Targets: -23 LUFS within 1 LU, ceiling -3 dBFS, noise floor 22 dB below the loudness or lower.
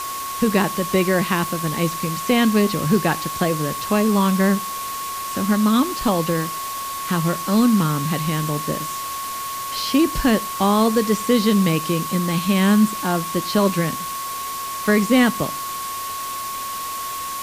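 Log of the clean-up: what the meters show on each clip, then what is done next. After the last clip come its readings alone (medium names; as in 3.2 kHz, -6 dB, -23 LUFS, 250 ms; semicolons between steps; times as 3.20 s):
steady tone 1.1 kHz; tone level -27 dBFS; noise floor -28 dBFS; noise floor target -43 dBFS; loudness -20.5 LUFS; peak level -5.0 dBFS; loudness target -23.0 LUFS
-> band-stop 1.1 kHz, Q 30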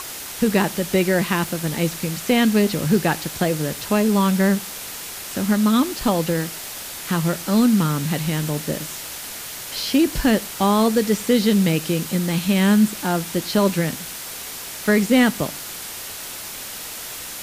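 steady tone not found; noise floor -33 dBFS; noise floor target -43 dBFS
-> noise reduction 10 dB, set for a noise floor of -33 dBFS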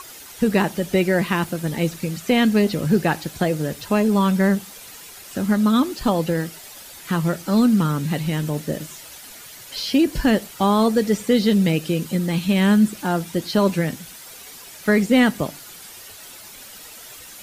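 noise floor -41 dBFS; noise floor target -43 dBFS
-> noise reduction 6 dB, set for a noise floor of -41 dBFS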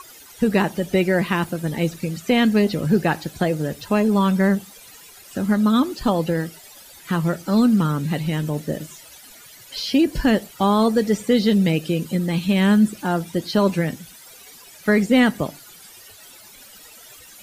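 noise floor -45 dBFS; loudness -20.5 LUFS; peak level -6.0 dBFS; loudness target -23.0 LUFS
-> trim -2.5 dB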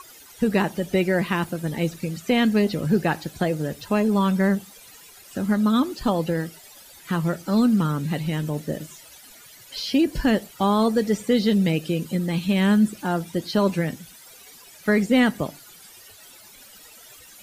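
loudness -23.0 LUFS; peak level -8.5 dBFS; noise floor -48 dBFS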